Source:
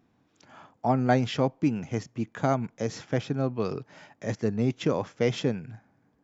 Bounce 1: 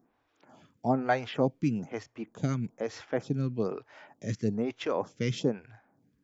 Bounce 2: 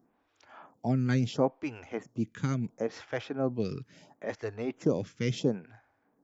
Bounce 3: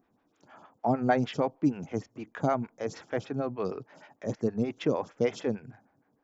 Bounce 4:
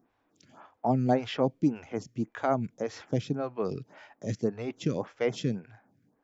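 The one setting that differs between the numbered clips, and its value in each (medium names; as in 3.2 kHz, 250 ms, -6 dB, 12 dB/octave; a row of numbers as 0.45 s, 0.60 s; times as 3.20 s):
lamp-driven phase shifter, rate: 1.1 Hz, 0.73 Hz, 6.5 Hz, 1.8 Hz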